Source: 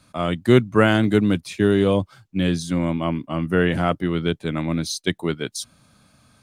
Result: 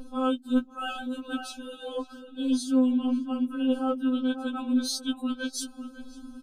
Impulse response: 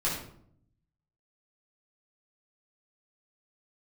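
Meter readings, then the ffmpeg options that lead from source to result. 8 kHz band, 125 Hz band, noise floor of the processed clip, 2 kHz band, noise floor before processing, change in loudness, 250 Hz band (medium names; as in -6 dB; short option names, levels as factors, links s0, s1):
-3.5 dB, under -30 dB, -50 dBFS, -13.0 dB, -58 dBFS, -7.5 dB, -4.5 dB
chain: -filter_complex "[0:a]acrossover=split=510|3400[s0][s1][s2];[s0]acompressor=mode=upward:threshold=0.0631:ratio=2.5[s3];[s3][s1][s2]amix=inputs=3:normalize=0,asuperstop=centerf=2000:order=12:qfactor=2.3,asplit=2[s4][s5];[s5]adelay=549,lowpass=f=1800:p=1,volume=0.2,asplit=2[s6][s7];[s7]adelay=549,lowpass=f=1800:p=1,volume=0.24,asplit=2[s8][s9];[s9]adelay=549,lowpass=f=1800:p=1,volume=0.24[s10];[s4][s6][s8][s10]amix=inputs=4:normalize=0,areverse,acompressor=threshold=0.0891:ratio=12,areverse,lowshelf=f=95:g=11.5,afftfilt=real='re*3.46*eq(mod(b,12),0)':imag='im*3.46*eq(mod(b,12),0)':win_size=2048:overlap=0.75"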